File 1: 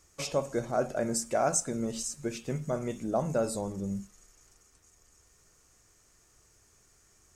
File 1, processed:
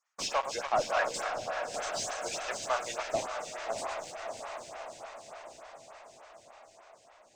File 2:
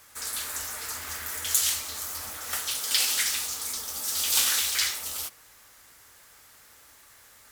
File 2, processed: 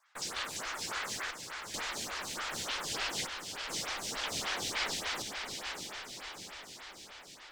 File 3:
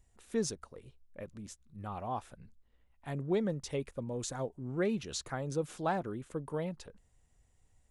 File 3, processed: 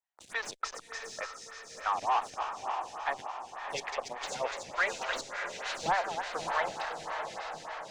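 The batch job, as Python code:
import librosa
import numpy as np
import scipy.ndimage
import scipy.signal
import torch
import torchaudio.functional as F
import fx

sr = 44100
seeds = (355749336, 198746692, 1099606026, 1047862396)

y = fx.reverse_delay_fb(x, sr, ms=143, feedback_pct=72, wet_db=-10.5)
y = scipy.signal.sosfilt(scipy.signal.butter(4, 790.0, 'highpass', fs=sr, output='sos'), y)
y = fx.high_shelf(y, sr, hz=5100.0, db=10.5)
y = fx.hpss(y, sr, part='percussive', gain_db=9)
y = fx.leveller(y, sr, passes=5)
y = fx.step_gate(y, sr, bpm=69, pattern='xxxxxx..x', floor_db=-60.0, edge_ms=4.5)
y = 10.0 ** (-16.5 / 20.0) * np.tanh(y / 10.0 ** (-16.5 / 20.0))
y = fx.cheby_harmonics(y, sr, harmonics=(6,), levels_db=(-33,), full_scale_db=-16.5)
y = fx.air_absorb(y, sr, metres=150.0)
y = fx.echo_diffused(y, sr, ms=642, feedback_pct=62, wet_db=-5.5)
y = fx.stagger_phaser(y, sr, hz=3.4)
y = F.gain(torch.from_numpy(y), -4.5).numpy()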